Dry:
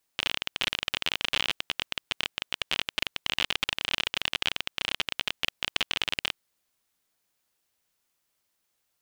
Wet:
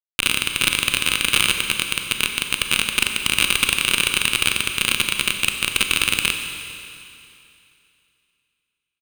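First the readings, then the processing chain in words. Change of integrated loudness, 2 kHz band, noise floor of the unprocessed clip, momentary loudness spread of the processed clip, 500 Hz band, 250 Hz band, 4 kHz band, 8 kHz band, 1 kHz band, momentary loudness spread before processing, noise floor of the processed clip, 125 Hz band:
+10.5 dB, +11.5 dB, -77 dBFS, 5 LU, +7.0 dB, +12.5 dB, +8.5 dB, +20.0 dB, +8.5 dB, 5 LU, -80 dBFS, +13.5 dB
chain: vibrato 4.7 Hz 7.9 cents; comb 0.8 ms, depth 30%; fuzz box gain 30 dB, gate -34 dBFS; high shelf 4300 Hz +7.5 dB; Schroeder reverb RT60 2.7 s, combs from 30 ms, DRR 5 dB; gain +3.5 dB

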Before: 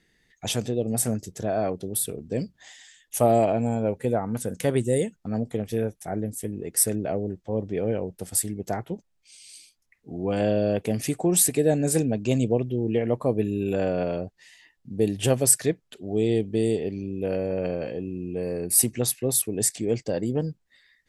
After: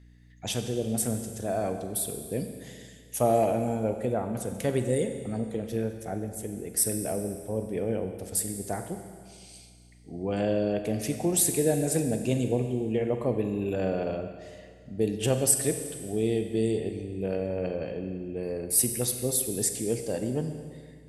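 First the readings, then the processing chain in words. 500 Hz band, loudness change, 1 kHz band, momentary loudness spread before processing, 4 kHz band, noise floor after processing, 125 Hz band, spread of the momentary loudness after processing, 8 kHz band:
-3.0 dB, -3.0 dB, -3.0 dB, 11 LU, -3.0 dB, -52 dBFS, -3.5 dB, 14 LU, -3.0 dB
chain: hum 60 Hz, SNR 23 dB; Schroeder reverb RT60 1.9 s, combs from 32 ms, DRR 6.5 dB; gain -4 dB

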